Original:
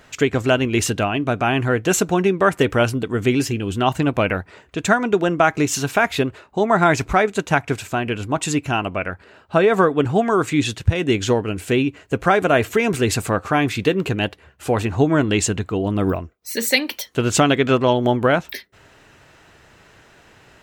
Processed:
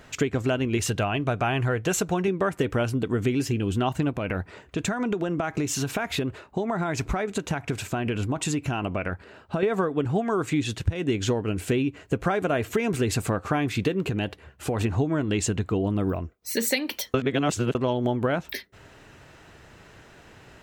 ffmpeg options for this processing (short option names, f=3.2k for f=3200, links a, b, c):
-filter_complex "[0:a]asettb=1/sr,asplit=3[a][b][c];[a]atrim=end=0.774[d];[b]atrim=start=0.77:end=2.28,asetpts=PTS-STARTPTS,afade=t=in:d=0.004:c=qsin,afade=t=out:st=1.506:d=0.004:c=qsin,equalizer=f=270:w=1.5:g=-7[e];[c]atrim=start=2.276[f];[d][e]acrossfade=d=0.004:c1=hsin:c2=qsin[g];[g][f]acrossfade=d=0.004:c1=qsin:c2=hsin,asettb=1/sr,asplit=3[h][i][j];[h]atrim=end=4.124[k];[i]atrim=start=4.12:end=9.63,asetpts=PTS-STARTPTS,afade=t=in:d=0.004:c=qsin,afade=t=out:st=5.506:d=0.004:c=qsin,acompressor=threshold=-22dB:ratio=6:attack=3.2:release=140:knee=1:detection=peak[l];[j]atrim=start=9.626[m];[k][l]acrossfade=d=0.004:c1=hsin:c2=qsin[n];[n][m]acrossfade=d=0.004:c1=qsin:c2=hsin,asettb=1/sr,asplit=3[o][p][q];[o]atrim=end=14.084[r];[p]atrim=start=14.08:end=14.81,asetpts=PTS-STARTPTS,afade=t=in:d=0.004:c=qsin,afade=t=out:st=0.726:d=0.004:c=qsin,acompressor=threshold=-21dB:ratio=6:attack=3.2:release=140:knee=1:detection=peak[s];[q]atrim=start=14.806[t];[r][s]acrossfade=d=0.004:c1=hsin:c2=qsin[u];[u][t]acrossfade=d=0.004:c1=qsin:c2=hsin,asplit=3[v][w][x];[v]atrim=end=17.142[y];[w]atrim=start=17.138:end=17.752,asetpts=PTS-STARTPTS,areverse[z];[x]atrim=start=17.748[aa];[y][z]acrossfade=d=0.004:c1=hsin:c2=hsin[ab];[ab][aa]acrossfade=d=0.004:c1=hsin:c2=hsin,lowshelf=f=490:g=4.5,acompressor=threshold=-19dB:ratio=6,volume=-2dB"